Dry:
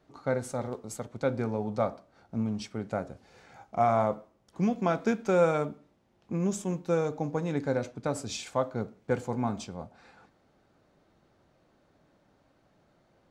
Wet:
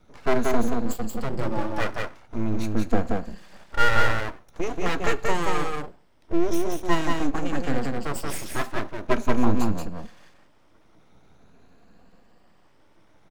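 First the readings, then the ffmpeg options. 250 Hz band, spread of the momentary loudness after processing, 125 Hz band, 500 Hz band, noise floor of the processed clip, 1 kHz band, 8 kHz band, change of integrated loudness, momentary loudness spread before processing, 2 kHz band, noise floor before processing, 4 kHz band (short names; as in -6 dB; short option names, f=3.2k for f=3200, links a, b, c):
+5.0 dB, 10 LU, +3.0 dB, +1.0 dB, -56 dBFS, +4.5 dB, +4.5 dB, +3.5 dB, 13 LU, +12.0 dB, -68 dBFS, +9.5 dB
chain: -filter_complex "[0:a]afftfilt=real='re*pow(10,24/40*sin(2*PI*(1.4*log(max(b,1)*sr/1024/100)/log(2)-(0.45)*(pts-256)/sr)))':imag='im*pow(10,24/40*sin(2*PI*(1.4*log(max(b,1)*sr/1024/100)/log(2)-(0.45)*(pts-256)/sr)))':win_size=1024:overlap=0.75,lowshelf=f=170:t=q:w=1.5:g=9.5,aeval=exprs='abs(val(0))':c=same,asplit=2[a][b];[b]aecho=0:1:180:0.708[c];[a][c]amix=inputs=2:normalize=0"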